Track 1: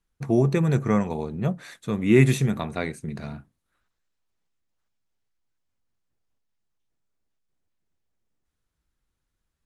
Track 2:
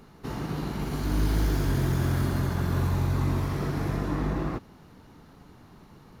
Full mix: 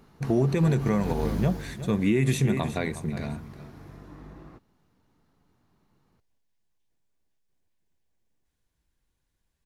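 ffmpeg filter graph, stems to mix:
ffmpeg -i stem1.wav -i stem2.wav -filter_complex "[0:a]bandreject=frequency=1300:width=6,volume=2dB,asplit=2[link_01][link_02];[link_02]volume=-15.5dB[link_03];[1:a]volume=-5dB,afade=type=out:start_time=1.1:duration=0.67:silence=0.237137[link_04];[link_03]aecho=0:1:362:1[link_05];[link_01][link_04][link_05]amix=inputs=3:normalize=0,alimiter=limit=-14dB:level=0:latency=1:release=124" out.wav

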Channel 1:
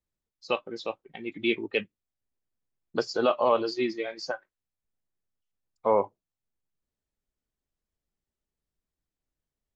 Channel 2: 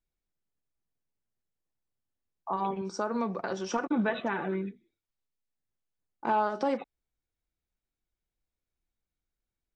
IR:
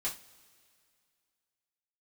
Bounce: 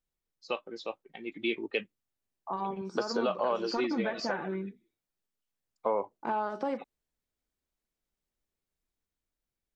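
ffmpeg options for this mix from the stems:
-filter_complex "[0:a]highpass=180,dynaudnorm=framelen=590:gausssize=5:maxgain=4.5dB,volume=-5dB[link_01];[1:a]acrossover=split=2700[link_02][link_03];[link_03]acompressor=threshold=-51dB:ratio=4:attack=1:release=60[link_04];[link_02][link_04]amix=inputs=2:normalize=0,volume=-3dB[link_05];[link_01][link_05]amix=inputs=2:normalize=0,acompressor=threshold=-26dB:ratio=4"

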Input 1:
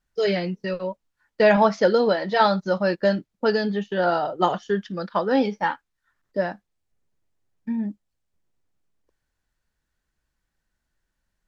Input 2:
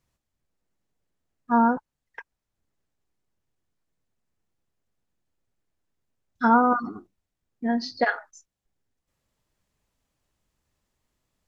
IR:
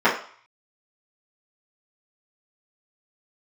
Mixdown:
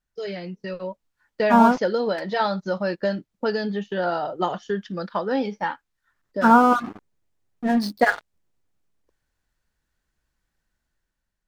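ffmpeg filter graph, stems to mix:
-filter_complex "[0:a]acompressor=threshold=-30dB:ratio=1.5,volume=-5.5dB[link_01];[1:a]aeval=exprs='sgn(val(0))*max(abs(val(0))-0.0119,0)':channel_layout=same,volume=-1.5dB[link_02];[link_01][link_02]amix=inputs=2:normalize=0,dynaudnorm=framelen=210:gausssize=7:maxgain=7dB"

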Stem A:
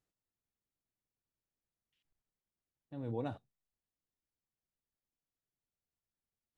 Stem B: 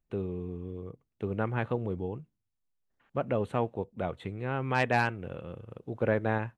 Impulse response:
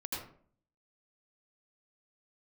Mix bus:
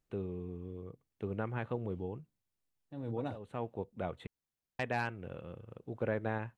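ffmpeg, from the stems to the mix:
-filter_complex "[0:a]volume=0.5dB,asplit=2[link_01][link_02];[1:a]alimiter=limit=-17dB:level=0:latency=1:release=229,volume=-5dB,asplit=3[link_03][link_04][link_05];[link_03]atrim=end=4.27,asetpts=PTS-STARTPTS,afade=type=out:start_time=4.266:duration=0.004:curve=hsin[link_06];[link_04]atrim=start=4.27:end=4.79,asetpts=PTS-STARTPTS,volume=0[link_07];[link_05]atrim=start=4.79,asetpts=PTS-STARTPTS,afade=type=in:duration=0.004:curve=hsin[link_08];[link_06][link_07][link_08]concat=n=3:v=0:a=1[link_09];[link_02]apad=whole_len=289808[link_10];[link_09][link_10]sidechaincompress=threshold=-51dB:ratio=8:attack=47:release=335[link_11];[link_01][link_11]amix=inputs=2:normalize=0"

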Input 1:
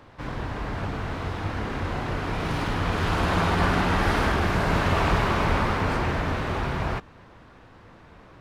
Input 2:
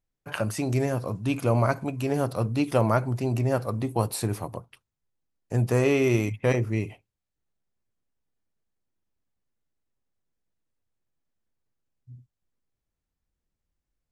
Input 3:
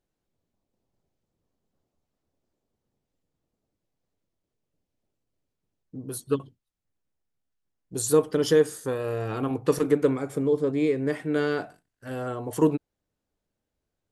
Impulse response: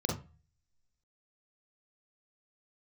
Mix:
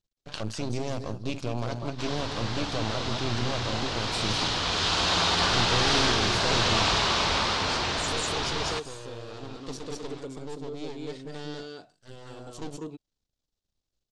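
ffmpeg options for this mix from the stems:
-filter_complex "[0:a]lowshelf=frequency=410:gain=-11.5,adelay=1800,volume=1dB,asplit=2[link_01][link_02];[link_02]volume=-21dB[link_03];[1:a]highshelf=frequency=4100:gain=-10,volume=-0.5dB,asplit=3[link_04][link_05][link_06];[link_05]volume=-14.5dB[link_07];[2:a]asoftclip=type=tanh:threshold=-17dB,volume=-9.5dB,asplit=2[link_08][link_09];[link_09]volume=-4.5dB[link_10];[link_06]apad=whole_len=622379[link_11];[link_08][link_11]sidechaincompress=threshold=-42dB:ratio=8:attack=16:release=845[link_12];[link_04][link_12]amix=inputs=2:normalize=0,aeval=exprs='max(val(0),0)':channel_layout=same,alimiter=limit=-19.5dB:level=0:latency=1:release=18,volume=0dB[link_13];[link_03][link_07][link_10]amix=inputs=3:normalize=0,aecho=0:1:196:1[link_14];[link_01][link_13][link_14]amix=inputs=3:normalize=0,lowpass=frequency=7400:width=0.5412,lowpass=frequency=7400:width=1.3066,highshelf=frequency=2800:width_type=q:width=1.5:gain=10.5"

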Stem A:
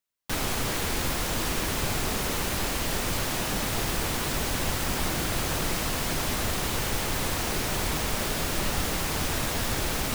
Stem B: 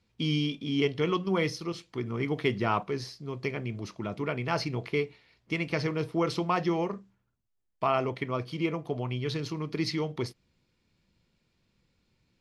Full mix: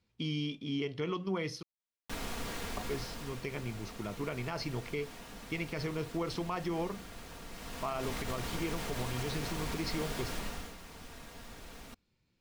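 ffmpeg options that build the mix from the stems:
ffmpeg -i stem1.wav -i stem2.wav -filter_complex "[0:a]highshelf=frequency=7000:gain=-7,aecho=1:1:4.3:0.38,adelay=1800,volume=-0.5dB,afade=type=out:start_time=2.64:duration=0.8:silence=0.354813,afade=type=in:start_time=7.5:duration=0.63:silence=0.316228,afade=type=out:start_time=10.33:duration=0.42:silence=0.266073[link_01];[1:a]volume=-5dB,asplit=3[link_02][link_03][link_04];[link_02]atrim=end=1.63,asetpts=PTS-STARTPTS,afade=type=out:start_time=1.626:duration=0.004:curve=hsin[link_05];[link_03]atrim=start=1.63:end=2.77,asetpts=PTS-STARTPTS,volume=0[link_06];[link_04]atrim=start=2.77,asetpts=PTS-STARTPTS,afade=type=in:duration=0.004:curve=hsin[link_07];[link_05][link_06][link_07]concat=n=3:v=0:a=1[link_08];[link_01][link_08]amix=inputs=2:normalize=0,alimiter=level_in=1.5dB:limit=-24dB:level=0:latency=1:release=71,volume=-1.5dB" out.wav

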